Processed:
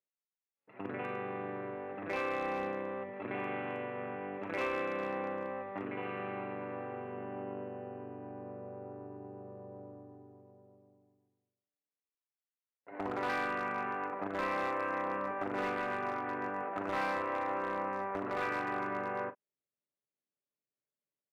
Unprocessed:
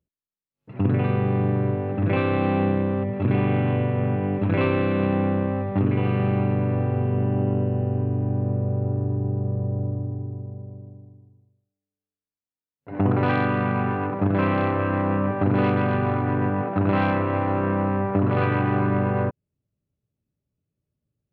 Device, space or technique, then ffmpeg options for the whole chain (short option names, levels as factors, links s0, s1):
megaphone: -filter_complex "[0:a]highpass=500,lowpass=2700,equalizer=f=2000:t=o:w=0.45:g=4.5,asoftclip=type=hard:threshold=0.1,asplit=2[s0][s1];[s1]adelay=40,volume=0.224[s2];[s0][s2]amix=inputs=2:normalize=0,volume=0.422"